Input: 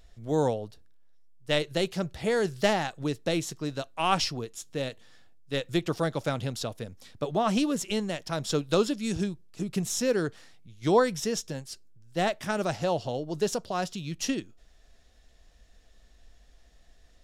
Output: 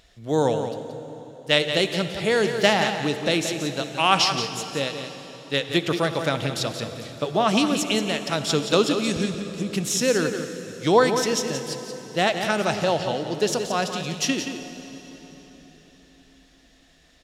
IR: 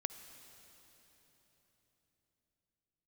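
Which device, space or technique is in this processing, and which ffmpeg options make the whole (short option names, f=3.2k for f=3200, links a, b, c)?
PA in a hall: -filter_complex "[0:a]highpass=f=120:p=1,equalizer=f=2.9k:t=o:w=1.8:g=5.5,aecho=1:1:176:0.355[a];[1:a]atrim=start_sample=2205[b];[a][b]afir=irnorm=-1:irlink=0,volume=5.5dB"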